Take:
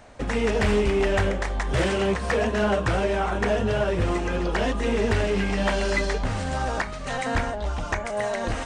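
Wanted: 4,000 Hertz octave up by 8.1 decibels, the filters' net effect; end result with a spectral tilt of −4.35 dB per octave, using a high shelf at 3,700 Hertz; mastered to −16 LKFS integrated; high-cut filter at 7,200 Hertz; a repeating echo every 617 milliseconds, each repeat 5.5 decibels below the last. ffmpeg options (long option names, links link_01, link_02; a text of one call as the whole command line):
ffmpeg -i in.wav -af "lowpass=7200,highshelf=frequency=3700:gain=7.5,equalizer=frequency=4000:width_type=o:gain=6.5,aecho=1:1:617|1234|1851|2468|3085|3702|4319:0.531|0.281|0.149|0.079|0.0419|0.0222|0.0118,volume=6dB" out.wav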